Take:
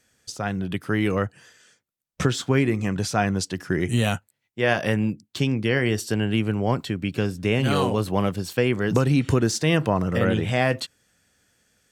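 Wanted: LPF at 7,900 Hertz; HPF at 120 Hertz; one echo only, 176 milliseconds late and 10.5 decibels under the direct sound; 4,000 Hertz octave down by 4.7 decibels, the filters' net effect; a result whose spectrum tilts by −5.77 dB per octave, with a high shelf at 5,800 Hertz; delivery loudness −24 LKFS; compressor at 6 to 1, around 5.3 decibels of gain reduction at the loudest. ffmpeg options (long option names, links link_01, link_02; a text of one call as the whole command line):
ffmpeg -i in.wav -af "highpass=120,lowpass=7900,equalizer=frequency=4000:width_type=o:gain=-5,highshelf=frequency=5800:gain=-4.5,acompressor=threshold=-22dB:ratio=6,aecho=1:1:176:0.299,volume=4dB" out.wav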